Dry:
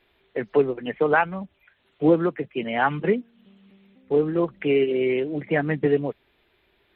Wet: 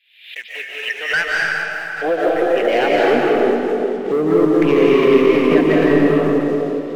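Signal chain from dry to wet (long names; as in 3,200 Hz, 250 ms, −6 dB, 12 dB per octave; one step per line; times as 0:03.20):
high-pass filter sweep 2,700 Hz → 210 Hz, 0:00.42–0:03.70
in parallel at −9 dB: asymmetric clip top −22 dBFS
on the sum: drawn EQ curve 660 Hz 0 dB, 1,100 Hz −17 dB, 1,700 Hz 0 dB
brickwall limiter −11 dBFS, peak gain reduction 7 dB
on a send: feedback echo with a band-pass in the loop 414 ms, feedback 40%, band-pass 470 Hz, level −6.5 dB
on the sum: leveller curve on the samples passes 2
low-shelf EQ 230 Hz −3.5 dB
comb and all-pass reverb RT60 2.1 s, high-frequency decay 0.95×, pre-delay 120 ms, DRR −4.5 dB
background raised ahead of every attack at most 98 dB per second
level −2.5 dB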